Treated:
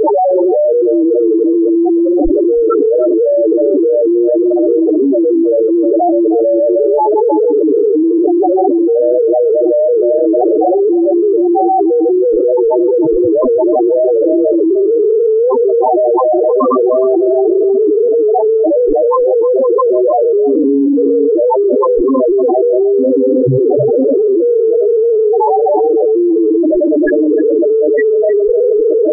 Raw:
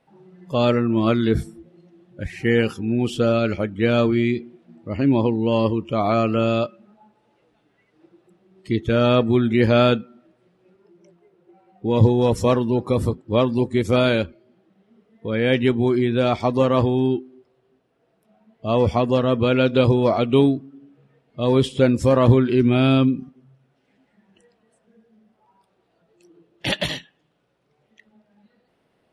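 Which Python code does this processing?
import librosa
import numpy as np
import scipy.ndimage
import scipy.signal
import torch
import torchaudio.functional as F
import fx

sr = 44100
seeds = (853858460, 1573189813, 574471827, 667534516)

p1 = fx.lower_of_two(x, sr, delay_ms=6.7)
p2 = scipy.signal.sosfilt(scipy.signal.butter(2, 1200.0, 'lowpass', fs=sr, output='sos'), p1)
p3 = fx.low_shelf_res(p2, sr, hz=260.0, db=-11.5, q=3.0)
p4 = fx.hum_notches(p3, sr, base_hz=60, count=6)
p5 = fx.power_curve(p4, sr, exponent=0.35)
p6 = fx.schmitt(p5, sr, flips_db=-30.0)
p7 = p5 + F.gain(torch.from_numpy(p6), -7.5).numpy()
p8 = fx.spec_topn(p7, sr, count=2)
p9 = p8 + fx.echo_single(p8, sr, ms=311, db=-11.5, dry=0)
p10 = fx.env_flatten(p9, sr, amount_pct=100)
y = F.gain(torch.from_numpy(p10), -3.0).numpy()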